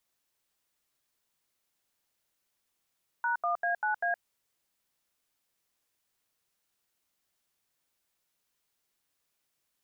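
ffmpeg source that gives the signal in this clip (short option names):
-f lavfi -i "aevalsrc='0.0355*clip(min(mod(t,0.196),0.117-mod(t,0.196))/0.002,0,1)*(eq(floor(t/0.196),0)*(sin(2*PI*941*mod(t,0.196))+sin(2*PI*1477*mod(t,0.196)))+eq(floor(t/0.196),1)*(sin(2*PI*697*mod(t,0.196))+sin(2*PI*1209*mod(t,0.196)))+eq(floor(t/0.196),2)*(sin(2*PI*697*mod(t,0.196))+sin(2*PI*1633*mod(t,0.196)))+eq(floor(t/0.196),3)*(sin(2*PI*852*mod(t,0.196))+sin(2*PI*1477*mod(t,0.196)))+eq(floor(t/0.196),4)*(sin(2*PI*697*mod(t,0.196))+sin(2*PI*1633*mod(t,0.196))))':d=0.98:s=44100"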